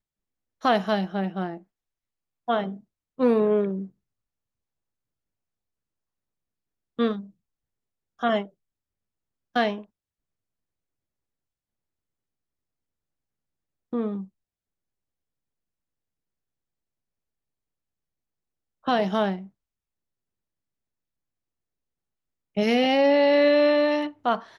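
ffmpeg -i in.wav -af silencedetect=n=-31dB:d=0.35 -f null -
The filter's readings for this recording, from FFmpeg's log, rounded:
silence_start: 0.00
silence_end: 0.65 | silence_duration: 0.65
silence_start: 1.57
silence_end: 2.48 | silence_duration: 0.91
silence_start: 2.74
silence_end: 3.20 | silence_duration: 0.46
silence_start: 3.84
silence_end: 6.99 | silence_duration: 3.14
silence_start: 7.20
silence_end: 8.23 | silence_duration: 1.03
silence_start: 8.43
silence_end: 9.56 | silence_duration: 1.12
silence_start: 9.78
silence_end: 13.93 | silence_duration: 4.15
silence_start: 14.22
silence_end: 18.87 | silence_duration: 4.65
silence_start: 19.39
silence_end: 22.57 | silence_duration: 3.18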